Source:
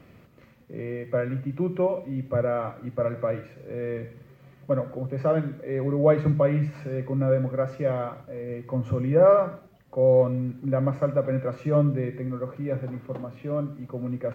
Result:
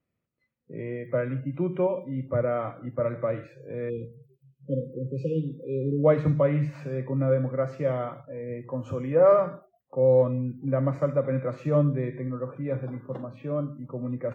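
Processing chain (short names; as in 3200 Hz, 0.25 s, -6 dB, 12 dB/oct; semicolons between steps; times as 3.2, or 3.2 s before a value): 3.9–6.04 spectral delete 540–2400 Hz; spectral noise reduction 29 dB; 8.69–9.32 tone controls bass -7 dB, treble +3 dB; gain -1 dB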